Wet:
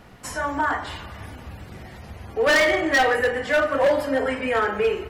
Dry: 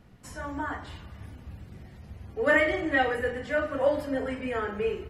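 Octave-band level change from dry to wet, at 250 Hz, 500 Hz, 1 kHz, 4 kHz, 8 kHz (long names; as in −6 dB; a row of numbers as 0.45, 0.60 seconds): +3.5 dB, +6.5 dB, +8.5 dB, +12.0 dB, can't be measured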